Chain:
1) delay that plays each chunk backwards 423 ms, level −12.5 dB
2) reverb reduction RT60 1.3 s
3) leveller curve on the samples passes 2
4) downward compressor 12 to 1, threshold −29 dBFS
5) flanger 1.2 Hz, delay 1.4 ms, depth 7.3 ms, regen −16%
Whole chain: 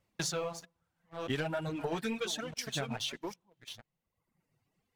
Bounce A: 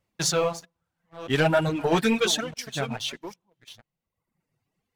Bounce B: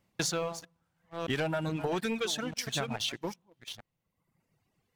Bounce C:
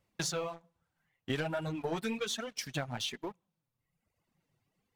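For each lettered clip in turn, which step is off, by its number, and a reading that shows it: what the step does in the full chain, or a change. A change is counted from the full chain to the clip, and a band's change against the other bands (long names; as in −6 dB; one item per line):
4, average gain reduction 8.0 dB
5, change in integrated loudness +3.5 LU
1, change in momentary loudness spread −5 LU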